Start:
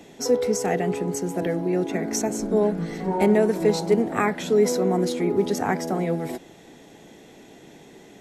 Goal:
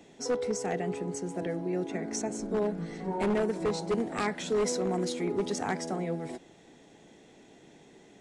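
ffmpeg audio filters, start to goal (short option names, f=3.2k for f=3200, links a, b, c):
-filter_complex "[0:a]asettb=1/sr,asplit=3[a][b][c];[a]atrim=end=3.944[d];[b]atrim=start=3.94:end=5.96,asetpts=PTS-STARTPTS,afade=t=in:d=0.004:c=qsin,afade=t=out:st=2.016:d=0.004:c=qsin,highshelf=f=2.2k:g=5.5[e];[c]atrim=start=5.956[f];[d][e]acrossfade=d=0.004:c1=hsin:c2=qsin[g];[g][f]acrossfade=d=0.004:c1=qsin:c2=hsin,aeval=exprs='0.211*(abs(mod(val(0)/0.211+3,4)-2)-1)':c=same,aresample=22050,aresample=44100,volume=-8dB"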